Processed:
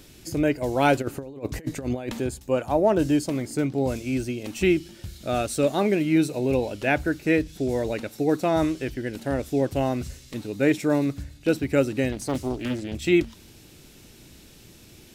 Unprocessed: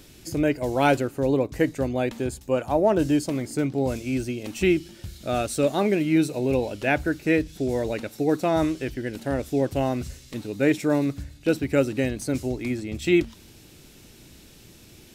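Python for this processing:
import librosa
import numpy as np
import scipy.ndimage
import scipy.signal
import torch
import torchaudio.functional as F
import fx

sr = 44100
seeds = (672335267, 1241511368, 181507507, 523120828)

y = fx.over_compress(x, sr, threshold_db=-29.0, ratio=-0.5, at=(1.01, 2.19), fade=0.02)
y = fx.doppler_dist(y, sr, depth_ms=0.58, at=(12.12, 12.95))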